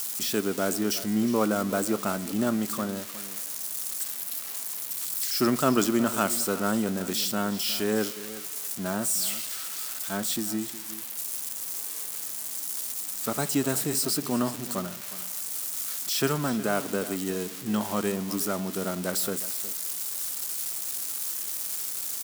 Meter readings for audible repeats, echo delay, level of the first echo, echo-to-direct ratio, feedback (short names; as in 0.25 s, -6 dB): 1, 0.363 s, -15.5 dB, -15.5 dB, no steady repeat